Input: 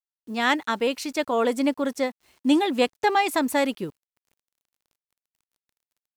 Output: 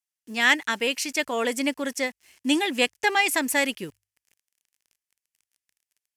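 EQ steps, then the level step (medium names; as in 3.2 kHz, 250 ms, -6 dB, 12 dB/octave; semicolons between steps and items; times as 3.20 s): high-order bell 2.3 kHz +10 dB 1.2 oct; high-order bell 7.7 kHz +11.5 dB; hum notches 50/100 Hz; -4.0 dB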